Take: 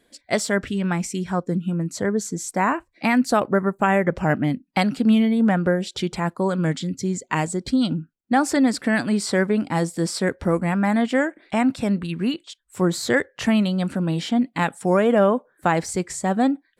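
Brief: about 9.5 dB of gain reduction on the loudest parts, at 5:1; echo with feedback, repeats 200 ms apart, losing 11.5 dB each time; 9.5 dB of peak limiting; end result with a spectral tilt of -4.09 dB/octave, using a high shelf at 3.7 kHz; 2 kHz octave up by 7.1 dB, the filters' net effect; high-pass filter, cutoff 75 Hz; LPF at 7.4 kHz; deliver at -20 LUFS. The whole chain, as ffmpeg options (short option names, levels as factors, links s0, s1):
-af "highpass=75,lowpass=7400,equalizer=f=2000:t=o:g=6.5,highshelf=f=3700:g=8.5,acompressor=threshold=0.0708:ratio=5,alimiter=limit=0.133:level=0:latency=1,aecho=1:1:200|400|600:0.266|0.0718|0.0194,volume=2.37"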